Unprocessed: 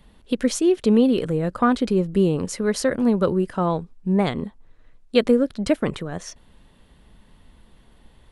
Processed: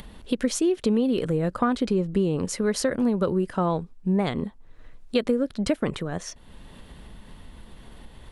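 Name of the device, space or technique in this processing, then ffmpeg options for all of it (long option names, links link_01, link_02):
upward and downward compression: -filter_complex "[0:a]asettb=1/sr,asplit=3[link_01][link_02][link_03];[link_01]atrim=end=1.874[link_04];[link_02]atrim=start=1.87:end=2.43,asetpts=PTS-STARTPTS,afade=type=in:duration=0.004:curve=qsin,afade=type=out:start_time=0.556:duration=0.004:curve=qsin,lowpass=9300[link_05];[link_03]atrim=start=2.426[link_06];[link_04][link_05]acrossfade=duration=0.004:curve1=hsin:curve2=qsin[link_07];[link_07][link_06]acrossfade=duration=0.004:curve1=qsin:curve2=hsin,acompressor=mode=upward:threshold=-34dB:ratio=2.5,acompressor=threshold=-19dB:ratio=5"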